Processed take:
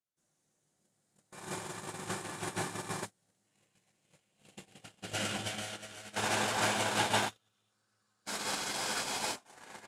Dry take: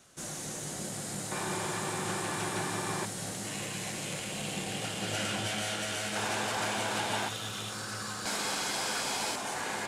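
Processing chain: gate -31 dBFS, range -45 dB; trim +5.5 dB

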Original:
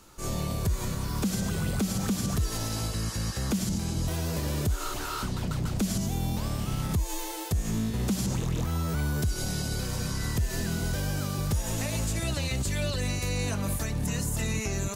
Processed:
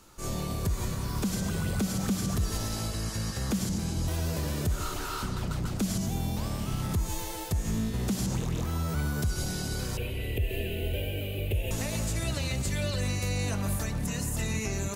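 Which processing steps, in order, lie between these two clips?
9.97–11.71 s: FFT filter 110 Hz 0 dB, 160 Hz -12 dB, 440 Hz +7 dB, 640 Hz +2 dB, 1.2 kHz -25 dB, 2.7 kHz +13 dB, 5.5 kHz -26 dB, 14 kHz +2 dB; bucket-brigade echo 132 ms, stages 2048, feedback 51%, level -10 dB; trim -1.5 dB

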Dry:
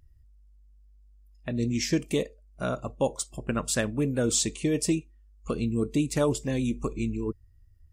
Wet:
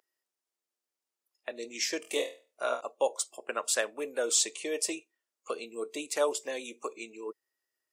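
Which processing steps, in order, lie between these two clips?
high-pass 460 Hz 24 dB/octave; 2.00–2.81 s: flutter echo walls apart 4.2 m, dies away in 0.34 s

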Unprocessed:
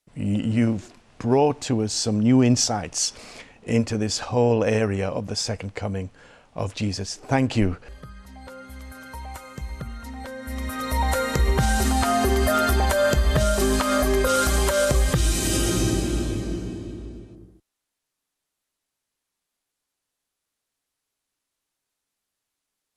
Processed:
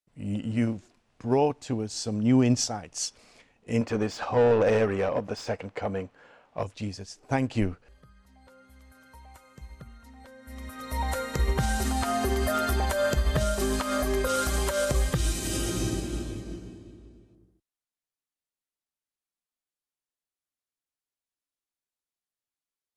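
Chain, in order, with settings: 3.81–6.63 s: overdrive pedal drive 21 dB, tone 1.1 kHz, clips at -8.5 dBFS; upward expansion 1.5:1, over -36 dBFS; trim -3.5 dB

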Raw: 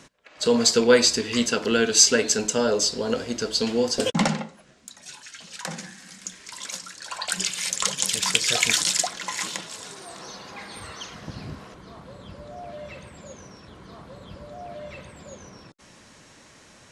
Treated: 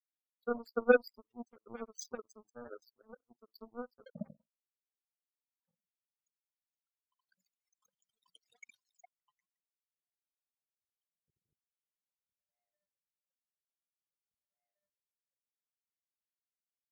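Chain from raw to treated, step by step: loudest bins only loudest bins 4; power-law waveshaper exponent 3; trim -1 dB

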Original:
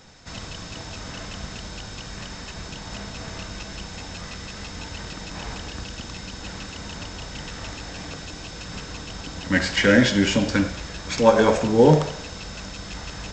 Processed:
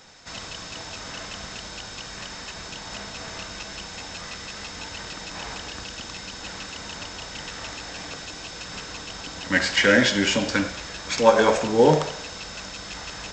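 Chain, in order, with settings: bass shelf 290 Hz -11 dB; trim +2 dB

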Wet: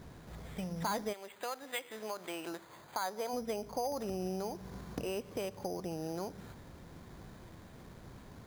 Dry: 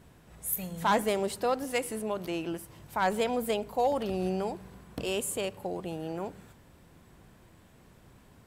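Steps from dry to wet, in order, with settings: 1.12–3.32 s: band-pass filter 3.5 kHz -> 900 Hz, Q 0.76; careless resampling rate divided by 8×, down filtered, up hold; compression 3:1, threshold -43 dBFS, peak gain reduction 15.5 dB; trim +5 dB

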